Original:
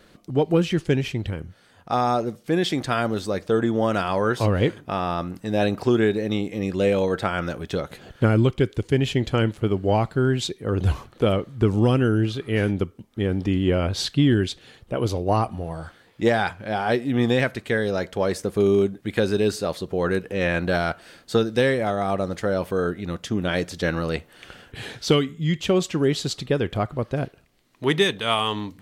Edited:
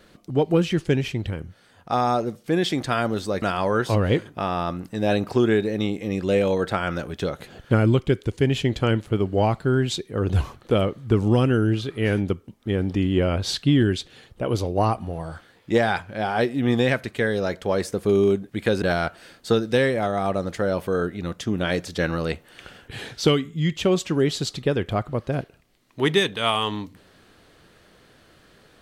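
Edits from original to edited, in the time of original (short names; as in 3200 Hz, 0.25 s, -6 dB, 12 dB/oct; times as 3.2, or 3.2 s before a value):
3.42–3.93 cut
19.33–20.66 cut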